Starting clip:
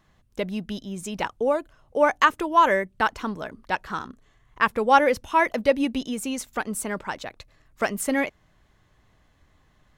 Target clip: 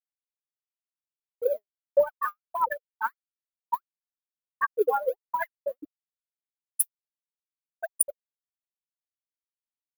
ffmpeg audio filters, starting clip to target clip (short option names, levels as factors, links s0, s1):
-af "highpass=f=530:p=1,aemphasis=mode=production:type=50fm,afftfilt=real='re*gte(hypot(re,im),0.562)':imag='im*gte(hypot(re,im),0.562)':win_size=1024:overlap=0.75,highshelf=f=4000:g=-7.5,acompressor=threshold=0.0251:ratio=12,alimiter=level_in=2.11:limit=0.0631:level=0:latency=1:release=71,volume=0.473,aphaser=in_gain=1:out_gain=1:delay=5:decay=0.68:speed=1.5:type=sinusoidal,aexciter=amount=9:drive=7.9:freq=11000,volume=2.82"